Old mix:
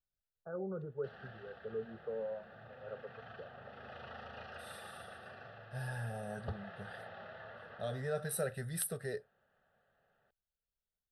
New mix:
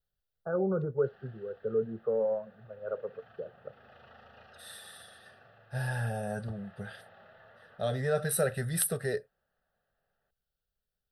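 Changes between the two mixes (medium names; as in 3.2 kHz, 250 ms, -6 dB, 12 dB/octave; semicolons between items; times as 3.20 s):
first voice +11.0 dB; second voice +8.0 dB; background -6.5 dB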